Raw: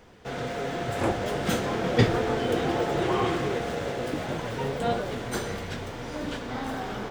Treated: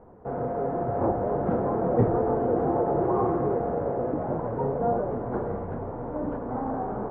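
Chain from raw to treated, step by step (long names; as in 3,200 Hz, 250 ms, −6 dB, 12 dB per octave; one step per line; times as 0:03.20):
low-pass filter 1,000 Hz 24 dB per octave
low-shelf EQ 320 Hz −4.5 dB
in parallel at +1.5 dB: brickwall limiter −23 dBFS, peak gain reduction 10.5 dB
on the sum: level −1.5 dB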